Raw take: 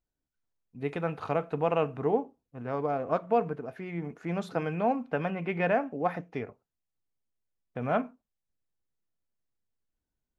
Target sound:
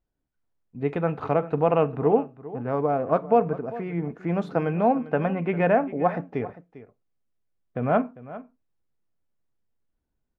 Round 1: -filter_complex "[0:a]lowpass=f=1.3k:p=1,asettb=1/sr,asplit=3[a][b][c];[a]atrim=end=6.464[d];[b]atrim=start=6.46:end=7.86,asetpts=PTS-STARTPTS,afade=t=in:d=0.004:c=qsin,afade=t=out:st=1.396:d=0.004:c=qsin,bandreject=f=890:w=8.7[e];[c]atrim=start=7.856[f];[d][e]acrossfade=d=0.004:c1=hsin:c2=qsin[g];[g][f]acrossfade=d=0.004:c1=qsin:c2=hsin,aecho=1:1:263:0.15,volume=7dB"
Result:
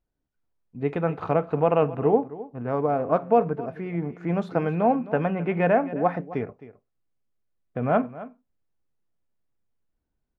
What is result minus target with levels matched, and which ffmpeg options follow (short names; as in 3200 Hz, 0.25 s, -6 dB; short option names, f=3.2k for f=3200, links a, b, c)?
echo 0.136 s early
-filter_complex "[0:a]lowpass=f=1.3k:p=1,asettb=1/sr,asplit=3[a][b][c];[a]atrim=end=6.464[d];[b]atrim=start=6.46:end=7.86,asetpts=PTS-STARTPTS,afade=t=in:d=0.004:c=qsin,afade=t=out:st=1.396:d=0.004:c=qsin,bandreject=f=890:w=8.7[e];[c]atrim=start=7.856[f];[d][e]acrossfade=d=0.004:c1=hsin:c2=qsin[g];[g][f]acrossfade=d=0.004:c1=qsin:c2=hsin,aecho=1:1:399:0.15,volume=7dB"